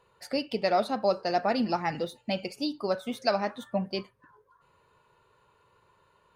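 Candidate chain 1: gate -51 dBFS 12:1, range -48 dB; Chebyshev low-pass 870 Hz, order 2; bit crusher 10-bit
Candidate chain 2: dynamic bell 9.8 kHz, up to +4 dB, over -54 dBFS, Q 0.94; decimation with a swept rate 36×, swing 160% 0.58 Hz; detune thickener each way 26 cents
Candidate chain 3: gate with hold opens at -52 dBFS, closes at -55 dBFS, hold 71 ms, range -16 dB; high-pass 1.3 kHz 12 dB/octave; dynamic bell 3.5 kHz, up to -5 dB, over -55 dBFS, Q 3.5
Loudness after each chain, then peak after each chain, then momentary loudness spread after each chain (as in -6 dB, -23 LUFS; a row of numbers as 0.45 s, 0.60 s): -30.5 LUFS, -33.5 LUFS, -38.0 LUFS; -14.5 dBFS, -17.0 dBFS, -17.0 dBFS; 8 LU, 8 LU, 7 LU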